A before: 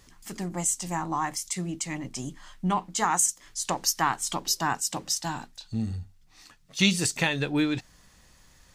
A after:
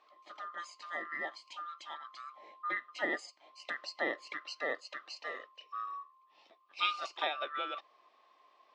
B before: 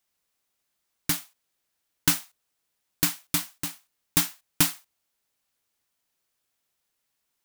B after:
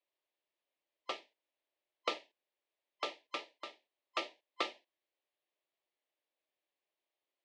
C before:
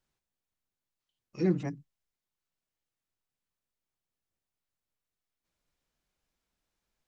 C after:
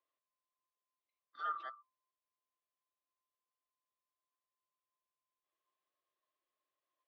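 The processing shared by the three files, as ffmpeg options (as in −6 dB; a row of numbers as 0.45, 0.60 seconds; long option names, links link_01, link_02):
-af "afftfilt=real='real(if(lt(b,960),b+48*(1-2*mod(floor(b/48),2)),b),0)':imag='imag(if(lt(b,960),b+48*(1-2*mod(floor(b/48),2)),b),0)':win_size=2048:overlap=0.75,highpass=frequency=310:width=0.5412,highpass=frequency=310:width=1.3066,equalizer=frequency=330:width_type=q:width=4:gain=5,equalizer=frequency=590:width_type=q:width=4:gain=8,equalizer=frequency=1400:width_type=q:width=4:gain=-9,lowpass=frequency=3700:width=0.5412,lowpass=frequency=3700:width=1.3066,volume=-7.5dB"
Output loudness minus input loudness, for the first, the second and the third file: −11.0, −16.0, −11.0 LU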